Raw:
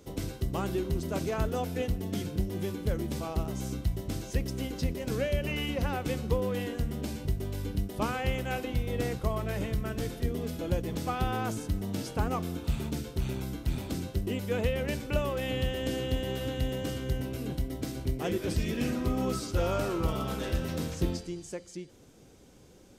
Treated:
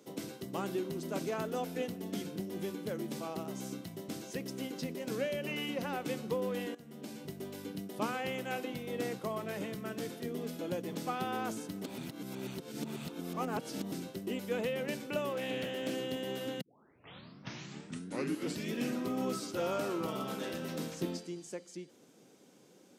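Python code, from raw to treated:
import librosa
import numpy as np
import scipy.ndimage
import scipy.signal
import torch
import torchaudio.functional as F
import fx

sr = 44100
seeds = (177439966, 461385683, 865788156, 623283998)

y = fx.doppler_dist(x, sr, depth_ms=0.36, at=(15.33, 15.95))
y = fx.edit(y, sr, fx.fade_in_from(start_s=6.75, length_s=0.6, floor_db=-16.5),
    fx.reverse_span(start_s=11.84, length_s=2.08),
    fx.tape_start(start_s=16.61, length_s=2.09), tone=tone)
y = scipy.signal.sosfilt(scipy.signal.butter(4, 170.0, 'highpass', fs=sr, output='sos'), y)
y = y * librosa.db_to_amplitude(-3.5)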